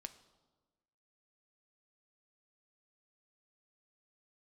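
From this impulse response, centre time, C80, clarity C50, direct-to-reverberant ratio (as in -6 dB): 6 ms, 16.5 dB, 14.5 dB, 8.5 dB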